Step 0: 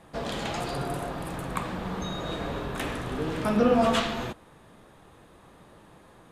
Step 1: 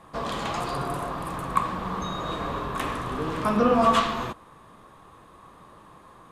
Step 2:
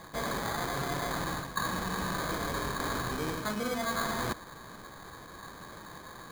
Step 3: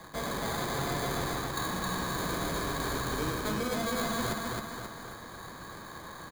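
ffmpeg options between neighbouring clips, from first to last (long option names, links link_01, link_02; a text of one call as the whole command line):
ffmpeg -i in.wav -af "equalizer=frequency=1100:width_type=o:width=0.33:gain=13" out.wav
ffmpeg -i in.wav -af "areverse,acompressor=threshold=-33dB:ratio=12,areverse,acrusher=samples=16:mix=1:aa=0.000001,volume=3.5dB" out.wav
ffmpeg -i in.wav -filter_complex "[0:a]aecho=1:1:267|534|801|1068|1335|1602:0.708|0.347|0.17|0.0833|0.0408|0.02,acrossover=split=150|620|2800[link_01][link_02][link_03][link_04];[link_03]asoftclip=type=tanh:threshold=-33dB[link_05];[link_01][link_02][link_05][link_04]amix=inputs=4:normalize=0" out.wav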